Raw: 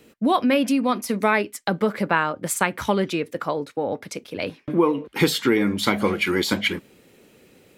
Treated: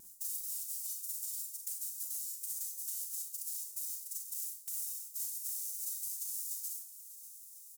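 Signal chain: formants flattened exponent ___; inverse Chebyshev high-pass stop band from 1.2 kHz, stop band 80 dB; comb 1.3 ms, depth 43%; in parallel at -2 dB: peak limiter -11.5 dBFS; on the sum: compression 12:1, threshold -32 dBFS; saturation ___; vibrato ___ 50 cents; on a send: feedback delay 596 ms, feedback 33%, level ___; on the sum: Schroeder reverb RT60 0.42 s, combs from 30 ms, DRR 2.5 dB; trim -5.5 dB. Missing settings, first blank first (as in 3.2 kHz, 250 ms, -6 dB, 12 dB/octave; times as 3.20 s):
0.1, -20 dBFS, 3 Hz, -15 dB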